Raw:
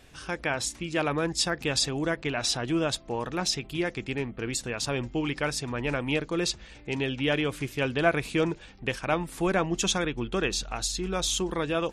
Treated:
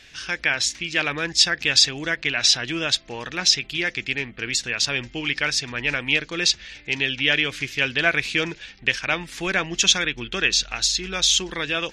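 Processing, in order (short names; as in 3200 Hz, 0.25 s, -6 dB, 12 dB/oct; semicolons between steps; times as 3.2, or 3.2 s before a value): band shelf 3200 Hz +14 dB 2.4 oct; gain -2.5 dB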